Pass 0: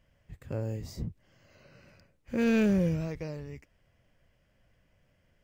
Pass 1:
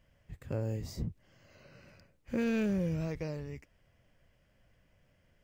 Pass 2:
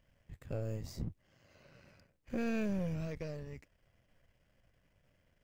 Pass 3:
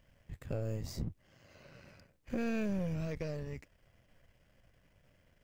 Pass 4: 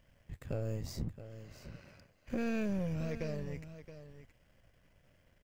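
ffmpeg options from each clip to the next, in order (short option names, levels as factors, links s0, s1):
-af "acompressor=threshold=0.0398:ratio=6"
-af "aeval=exprs='if(lt(val(0),0),0.447*val(0),val(0))':c=same,volume=0.891"
-af "acompressor=threshold=0.0112:ratio=2,volume=1.68"
-af "aecho=1:1:672:0.237"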